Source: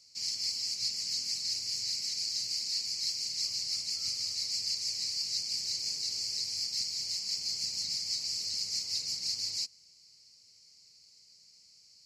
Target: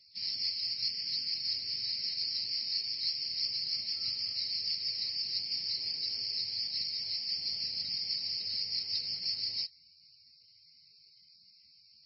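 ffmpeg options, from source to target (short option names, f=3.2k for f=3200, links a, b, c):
-af "asuperstop=centerf=1100:order=4:qfactor=7.5" -ar 16000 -c:a libmp3lame -b:a 16k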